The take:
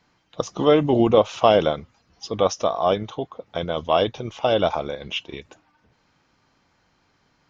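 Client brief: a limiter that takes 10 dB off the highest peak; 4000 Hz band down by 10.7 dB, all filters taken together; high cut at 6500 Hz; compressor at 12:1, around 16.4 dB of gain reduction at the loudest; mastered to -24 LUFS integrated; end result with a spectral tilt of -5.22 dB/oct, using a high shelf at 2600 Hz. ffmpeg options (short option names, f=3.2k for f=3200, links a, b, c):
-af "lowpass=6.5k,highshelf=f=2.6k:g=-8.5,equalizer=f=4k:t=o:g=-7.5,acompressor=threshold=-28dB:ratio=12,volume=13dB,alimiter=limit=-10.5dB:level=0:latency=1"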